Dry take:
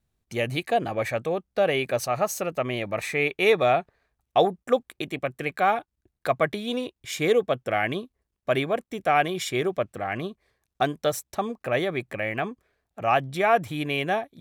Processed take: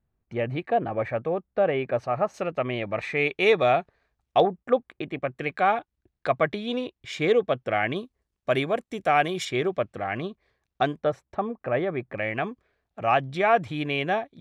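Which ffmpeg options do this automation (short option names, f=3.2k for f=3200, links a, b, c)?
-af "asetnsamples=n=441:p=0,asendcmd='2.34 lowpass f 3200;3.17 lowpass f 6100;4.4 lowpass f 2300;5.37 lowpass f 4200;7.96 lowpass f 8900;9.45 lowpass f 4600;11 lowpass f 1700;12.18 lowpass f 4600',lowpass=1.7k"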